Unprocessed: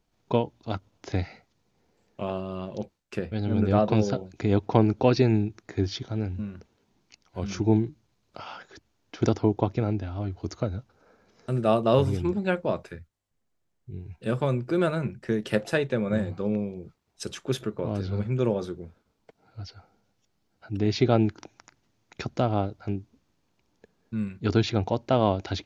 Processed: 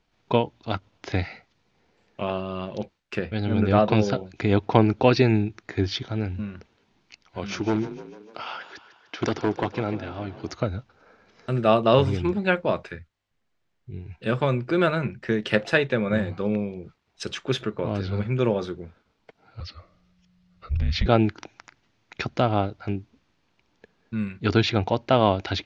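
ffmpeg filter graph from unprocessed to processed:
ffmpeg -i in.wav -filter_complex "[0:a]asettb=1/sr,asplit=3[link_01][link_02][link_03];[link_01]atrim=end=7.384[link_04];[link_02]atrim=start=7.38:end=10.53,asetpts=PTS-STARTPTS,afade=type=in:duration=0.004:curve=qsin,afade=type=out:start_time=3.146:duration=0.004:curve=qsin,highpass=frequency=210:poles=1,asoftclip=type=hard:threshold=-19.5dB,asplit=7[link_05][link_06][link_07][link_08][link_09][link_10][link_11];[link_06]adelay=149,afreqshift=31,volume=-14dB[link_12];[link_07]adelay=298,afreqshift=62,volume=-19dB[link_13];[link_08]adelay=447,afreqshift=93,volume=-24.1dB[link_14];[link_09]adelay=596,afreqshift=124,volume=-29.1dB[link_15];[link_10]adelay=745,afreqshift=155,volume=-34.1dB[link_16];[link_11]adelay=894,afreqshift=186,volume=-39.2dB[link_17];[link_05][link_12][link_13][link_14][link_15][link_16][link_17]amix=inputs=7:normalize=0,atrim=end_sample=138915[link_18];[link_03]atrim=start=10.526[link_19];[link_04][link_18]acrossfade=duration=0.004:curve1=hsin:curve2=qsin[link_20];[link_20][link_19]acrossfade=duration=0.004:curve1=qsin:curve2=hsin,asettb=1/sr,asplit=3[link_21][link_22][link_23];[link_21]atrim=end=19.604[link_24];[link_22]atrim=start=19.6:end=21.06,asetpts=PTS-STARTPTS,afade=type=in:duration=0.004:curve=qsin,afade=type=out:start_time=1.456:duration=0.004:curve=qsin,asubboost=boost=9.5:cutoff=250,acompressor=threshold=-22dB:ratio=3:attack=3.2:release=140:knee=1:detection=peak,afreqshift=-180[link_25];[link_23]atrim=start=21.056[link_26];[link_24][link_25]acrossfade=duration=0.004:curve1=hsin:curve2=qsin[link_27];[link_27][link_26]acrossfade=duration=0.004:curve1=qsin:curve2=hsin,lowpass=5600,equalizer=frequency=2300:width=0.51:gain=7,volume=1.5dB" out.wav

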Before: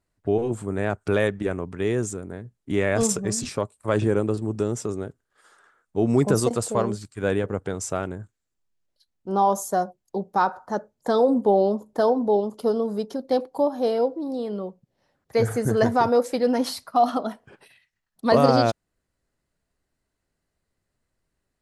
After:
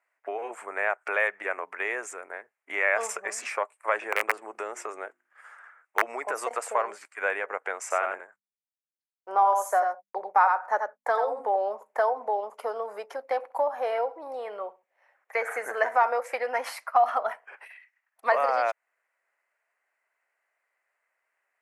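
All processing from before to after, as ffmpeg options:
ffmpeg -i in.wav -filter_complex "[0:a]asettb=1/sr,asplit=3[link_01][link_02][link_03];[link_01]atrim=end=4.124[link_04];[link_02]atrim=start=4.12:end=6.02,asetpts=PTS-STARTPTS,afade=type=in:duration=0.004:curve=qsin,afade=type=out:start_time=1.896:duration=0.004:curve=qsin,bandreject=frequency=50.4:width_type=h:width=4,bandreject=frequency=100.8:width_type=h:width=4,bandreject=frequency=151.2:width_type=h:width=4,bandreject=frequency=201.6:width_type=h:width=4,bandreject=frequency=252:width_type=h:width=4,bandreject=frequency=302.4:width_type=h:width=4,bandreject=frequency=352.8:width_type=h:width=4,aeval=exprs='(mod(4.47*val(0)+1,2)-1)/4.47':channel_layout=same[link_05];[link_03]atrim=start=6.016[link_06];[link_04][link_05]acrossfade=duration=0.004:curve1=hsin:curve2=qsin[link_07];[link_07][link_06]acrossfade=duration=0.004:curve1=qsin:curve2=hsin,asettb=1/sr,asplit=3[link_08][link_09][link_10];[link_08]atrim=end=7.814[link_11];[link_09]atrim=start=7.81:end=11.56,asetpts=PTS-STARTPTS,afade=type=in:duration=0.004:curve=qsin,afade=type=out:start_time=3.746:duration=0.004:curve=qsin,agate=range=-33dB:threshold=-41dB:ratio=3:release=100:detection=peak,bandreject=frequency=50:width_type=h:width=6,bandreject=frequency=100:width_type=h:width=6,bandreject=frequency=150:width_type=h:width=6,bandreject=frequency=200:width_type=h:width=6,bandreject=frequency=250:width_type=h:width=6,aecho=1:1:88:0.501,atrim=end_sample=165375[link_12];[link_10]atrim=start=11.556[link_13];[link_11][link_12]acrossfade=duration=0.004:curve1=hsin:curve2=qsin[link_14];[link_14][link_13]acrossfade=duration=0.004:curve1=qsin:curve2=hsin,asettb=1/sr,asplit=3[link_15][link_16][link_17];[link_15]atrim=end=13.374[link_18];[link_16]atrim=start=13.37:end=16.07,asetpts=PTS-STARTPTS,afade=type=in:duration=0.004:curve=qsin,afade=type=out:start_time=2.696:duration=0.004:curve=qsin,bandreject=frequency=4900:width=12,aecho=1:1:66|132:0.112|0.0281,atrim=end_sample=119070[link_19];[link_17]atrim=start=16.066[link_20];[link_18][link_19]acrossfade=duration=0.004:curve1=hsin:curve2=qsin[link_21];[link_21][link_20]acrossfade=duration=0.004:curve1=qsin:curve2=hsin,acompressor=threshold=-22dB:ratio=4,highpass=frequency=640:width=0.5412,highpass=frequency=640:width=1.3066,highshelf=frequency=2900:width_type=q:width=3:gain=-9.5,volume=5dB" out.wav

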